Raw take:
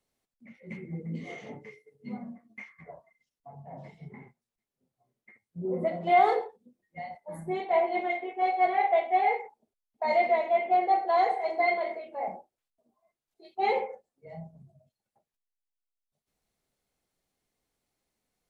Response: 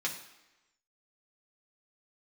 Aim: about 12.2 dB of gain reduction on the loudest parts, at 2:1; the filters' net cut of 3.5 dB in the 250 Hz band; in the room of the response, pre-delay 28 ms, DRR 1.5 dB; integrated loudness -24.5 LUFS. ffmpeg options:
-filter_complex "[0:a]equalizer=f=250:t=o:g=-6.5,acompressor=threshold=-40dB:ratio=2,asplit=2[a][b];[1:a]atrim=start_sample=2205,adelay=28[c];[b][c]afir=irnorm=-1:irlink=0,volume=-6.5dB[d];[a][d]amix=inputs=2:normalize=0,volume=13dB"

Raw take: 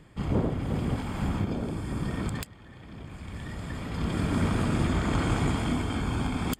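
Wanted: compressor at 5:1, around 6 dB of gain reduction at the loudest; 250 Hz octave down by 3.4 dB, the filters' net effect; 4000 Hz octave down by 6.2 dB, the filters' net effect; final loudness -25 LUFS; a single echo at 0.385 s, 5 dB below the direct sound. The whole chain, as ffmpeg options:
-af "equalizer=f=250:t=o:g=-4.5,equalizer=f=4k:t=o:g=-8.5,acompressor=threshold=-29dB:ratio=5,aecho=1:1:385:0.562,volume=9dB"

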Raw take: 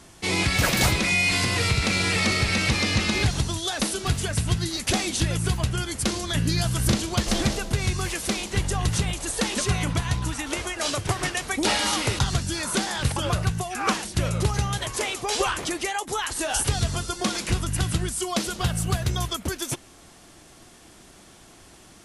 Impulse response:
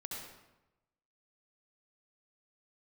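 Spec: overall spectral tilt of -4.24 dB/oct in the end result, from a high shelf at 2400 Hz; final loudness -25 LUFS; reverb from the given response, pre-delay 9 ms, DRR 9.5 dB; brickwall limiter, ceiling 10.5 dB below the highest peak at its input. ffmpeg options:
-filter_complex "[0:a]highshelf=f=2.4k:g=-5.5,alimiter=limit=-22dB:level=0:latency=1,asplit=2[a][b];[1:a]atrim=start_sample=2205,adelay=9[c];[b][c]afir=irnorm=-1:irlink=0,volume=-8.5dB[d];[a][d]amix=inputs=2:normalize=0,volume=5.5dB"

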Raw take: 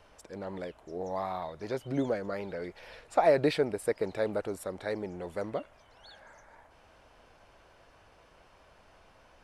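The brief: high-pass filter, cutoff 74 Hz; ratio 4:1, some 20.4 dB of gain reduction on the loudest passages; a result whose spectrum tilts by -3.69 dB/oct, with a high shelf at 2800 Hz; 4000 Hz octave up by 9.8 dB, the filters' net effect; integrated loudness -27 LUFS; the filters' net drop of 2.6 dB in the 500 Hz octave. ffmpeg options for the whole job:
-af "highpass=74,equalizer=f=500:t=o:g=-3.5,highshelf=f=2.8k:g=4.5,equalizer=f=4k:t=o:g=8,acompressor=threshold=-46dB:ratio=4,volume=22.5dB"

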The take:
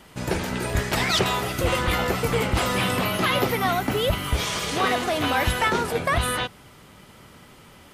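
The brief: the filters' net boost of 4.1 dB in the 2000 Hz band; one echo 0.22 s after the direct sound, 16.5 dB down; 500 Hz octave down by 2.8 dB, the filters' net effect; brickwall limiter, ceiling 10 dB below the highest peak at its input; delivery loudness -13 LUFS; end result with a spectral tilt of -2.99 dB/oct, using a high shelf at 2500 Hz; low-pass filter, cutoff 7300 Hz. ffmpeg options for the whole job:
-af "lowpass=7.3k,equalizer=f=500:t=o:g=-3.5,equalizer=f=2k:t=o:g=9,highshelf=f=2.5k:g=-8.5,alimiter=limit=-19.5dB:level=0:latency=1,aecho=1:1:220:0.15,volume=14.5dB"

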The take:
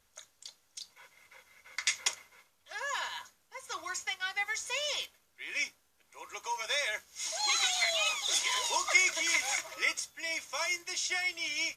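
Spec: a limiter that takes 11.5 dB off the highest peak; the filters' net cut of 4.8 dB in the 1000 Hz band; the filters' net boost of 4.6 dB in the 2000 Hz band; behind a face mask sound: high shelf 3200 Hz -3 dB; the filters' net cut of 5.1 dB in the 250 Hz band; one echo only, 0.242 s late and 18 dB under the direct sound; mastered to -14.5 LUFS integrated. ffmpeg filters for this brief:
-af "equalizer=f=250:t=o:g=-8,equalizer=f=1k:t=o:g=-7,equalizer=f=2k:t=o:g=7.5,alimiter=limit=-20dB:level=0:latency=1,highshelf=f=3.2k:g=-3,aecho=1:1:242:0.126,volume=17dB"

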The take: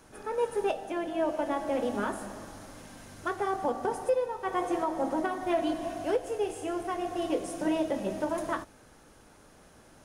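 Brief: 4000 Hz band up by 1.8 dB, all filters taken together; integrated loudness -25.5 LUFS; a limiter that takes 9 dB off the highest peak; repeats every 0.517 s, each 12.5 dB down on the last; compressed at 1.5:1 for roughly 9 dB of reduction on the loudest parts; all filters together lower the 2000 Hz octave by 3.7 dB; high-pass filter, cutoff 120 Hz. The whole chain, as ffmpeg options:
-af "highpass=120,equalizer=f=2k:t=o:g=-6.5,equalizer=f=4k:t=o:g=5.5,acompressor=threshold=-49dB:ratio=1.5,alimiter=level_in=10.5dB:limit=-24dB:level=0:latency=1,volume=-10.5dB,aecho=1:1:517|1034|1551:0.237|0.0569|0.0137,volume=18dB"

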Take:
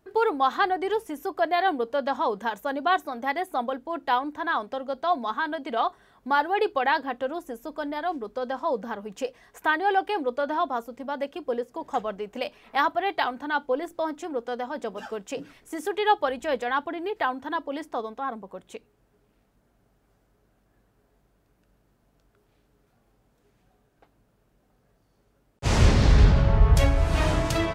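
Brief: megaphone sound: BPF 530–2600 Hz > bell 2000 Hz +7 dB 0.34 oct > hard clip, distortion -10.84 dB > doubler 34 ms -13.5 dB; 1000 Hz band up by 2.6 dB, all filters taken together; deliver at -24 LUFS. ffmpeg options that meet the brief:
-filter_complex "[0:a]highpass=530,lowpass=2.6k,equalizer=f=1k:t=o:g=4,equalizer=f=2k:t=o:w=0.34:g=7,asoftclip=type=hard:threshold=-19dB,asplit=2[a][b];[b]adelay=34,volume=-13.5dB[c];[a][c]amix=inputs=2:normalize=0,volume=4dB"

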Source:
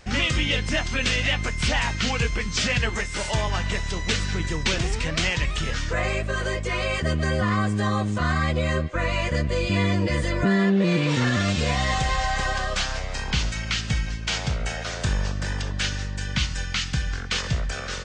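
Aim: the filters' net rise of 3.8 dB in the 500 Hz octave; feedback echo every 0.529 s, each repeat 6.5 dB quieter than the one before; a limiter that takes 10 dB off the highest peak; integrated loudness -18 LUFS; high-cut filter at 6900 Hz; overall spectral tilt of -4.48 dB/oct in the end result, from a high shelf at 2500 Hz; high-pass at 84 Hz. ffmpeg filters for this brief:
-af "highpass=84,lowpass=6.9k,equalizer=f=500:t=o:g=5,highshelf=f=2.5k:g=-8,alimiter=limit=-20.5dB:level=0:latency=1,aecho=1:1:529|1058|1587|2116|2645|3174:0.473|0.222|0.105|0.0491|0.0231|0.0109,volume=11dB"

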